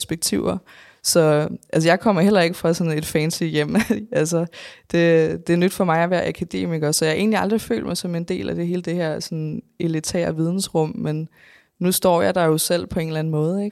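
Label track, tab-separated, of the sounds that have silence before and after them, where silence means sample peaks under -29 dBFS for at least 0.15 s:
1.050000	4.690000	sound
4.900000	9.590000	sound
9.800000	11.250000	sound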